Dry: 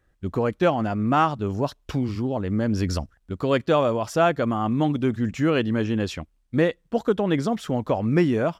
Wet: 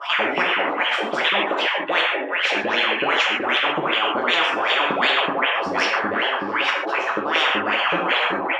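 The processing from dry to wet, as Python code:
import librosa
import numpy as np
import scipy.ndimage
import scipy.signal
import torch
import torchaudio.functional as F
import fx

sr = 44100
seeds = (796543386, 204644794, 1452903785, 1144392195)

p1 = np.flip(x).copy()
p2 = fx.low_shelf(p1, sr, hz=190.0, db=11.0)
p3 = fx.filter_lfo_highpass(p2, sr, shape='saw_up', hz=5.3, low_hz=500.0, high_hz=2800.0, q=7.6)
p4 = p3 + fx.echo_stepped(p3, sr, ms=202, hz=2500.0, octaves=-0.7, feedback_pct=70, wet_db=-6.5, dry=0)
p5 = fx.wah_lfo(p4, sr, hz=2.6, low_hz=270.0, high_hz=3100.0, q=9.4)
p6 = fx.rev_gated(p5, sr, seeds[0], gate_ms=170, shape='falling', drr_db=0.0)
y = fx.spectral_comp(p6, sr, ratio=10.0)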